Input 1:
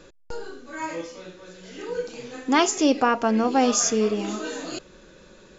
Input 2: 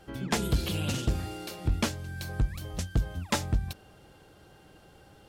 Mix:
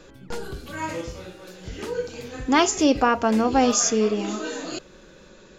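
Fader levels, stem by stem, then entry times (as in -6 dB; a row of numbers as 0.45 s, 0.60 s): +1.0 dB, -10.5 dB; 0.00 s, 0.00 s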